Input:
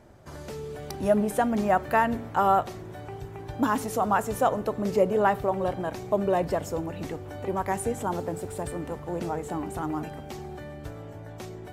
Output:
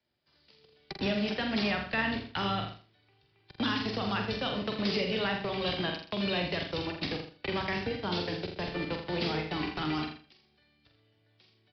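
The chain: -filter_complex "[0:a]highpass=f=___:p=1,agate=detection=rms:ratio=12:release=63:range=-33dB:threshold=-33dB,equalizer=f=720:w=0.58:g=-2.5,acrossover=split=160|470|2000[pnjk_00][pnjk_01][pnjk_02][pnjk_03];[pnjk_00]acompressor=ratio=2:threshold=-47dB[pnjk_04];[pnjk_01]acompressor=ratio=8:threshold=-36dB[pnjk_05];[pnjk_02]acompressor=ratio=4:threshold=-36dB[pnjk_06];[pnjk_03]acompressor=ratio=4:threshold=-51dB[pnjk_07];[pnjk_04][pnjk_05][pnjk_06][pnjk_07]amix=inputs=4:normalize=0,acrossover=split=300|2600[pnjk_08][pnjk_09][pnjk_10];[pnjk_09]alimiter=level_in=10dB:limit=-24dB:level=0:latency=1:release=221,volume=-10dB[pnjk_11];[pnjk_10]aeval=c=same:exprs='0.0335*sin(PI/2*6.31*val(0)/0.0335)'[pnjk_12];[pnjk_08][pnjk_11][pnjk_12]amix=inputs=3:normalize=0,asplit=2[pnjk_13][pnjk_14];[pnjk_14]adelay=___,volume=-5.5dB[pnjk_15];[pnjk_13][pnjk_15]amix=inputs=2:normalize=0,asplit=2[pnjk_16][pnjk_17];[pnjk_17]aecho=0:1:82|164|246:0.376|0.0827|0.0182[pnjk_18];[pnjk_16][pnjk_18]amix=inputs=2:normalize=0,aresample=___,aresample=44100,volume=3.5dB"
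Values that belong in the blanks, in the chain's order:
110, 45, 11025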